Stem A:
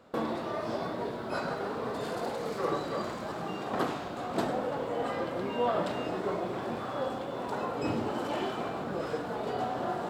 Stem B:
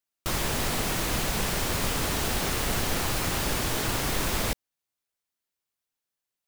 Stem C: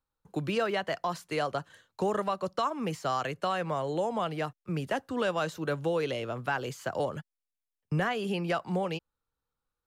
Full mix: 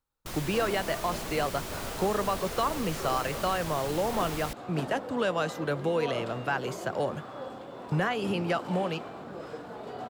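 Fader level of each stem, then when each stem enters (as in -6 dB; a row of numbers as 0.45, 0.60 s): -6.5, -10.5, +1.0 dB; 0.40, 0.00, 0.00 s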